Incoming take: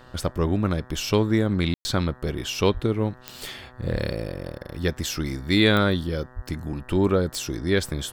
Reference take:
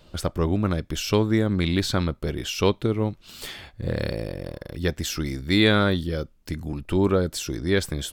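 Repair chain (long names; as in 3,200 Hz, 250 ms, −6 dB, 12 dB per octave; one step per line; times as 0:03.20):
click removal
hum removal 125.8 Hz, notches 15
0:02.73–0:02.85: high-pass filter 140 Hz 24 dB per octave
0:03.92–0:04.04: high-pass filter 140 Hz 24 dB per octave
0:06.35–0:06.47: high-pass filter 140 Hz 24 dB per octave
ambience match 0:01.74–0:01.85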